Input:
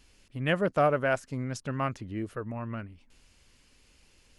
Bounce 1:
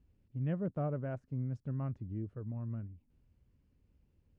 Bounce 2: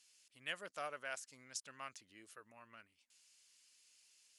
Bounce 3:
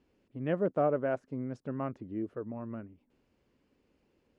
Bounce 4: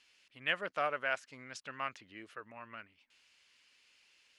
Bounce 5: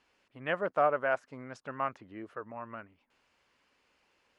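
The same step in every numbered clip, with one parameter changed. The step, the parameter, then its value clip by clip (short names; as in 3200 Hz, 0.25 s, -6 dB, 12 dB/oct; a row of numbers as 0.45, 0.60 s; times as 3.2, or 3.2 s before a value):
band-pass, frequency: 100, 7900, 340, 2700, 1000 Hz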